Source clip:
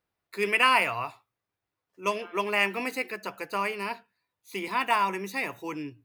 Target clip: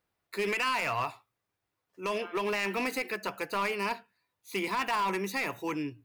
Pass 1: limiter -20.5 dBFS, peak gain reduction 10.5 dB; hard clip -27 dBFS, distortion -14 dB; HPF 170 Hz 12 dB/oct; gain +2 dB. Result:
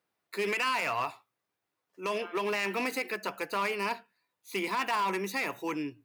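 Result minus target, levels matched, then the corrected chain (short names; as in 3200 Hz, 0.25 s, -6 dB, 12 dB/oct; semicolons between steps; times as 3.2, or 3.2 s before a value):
125 Hz band -3.0 dB
limiter -20.5 dBFS, peak gain reduction 10.5 dB; hard clip -27 dBFS, distortion -14 dB; gain +2 dB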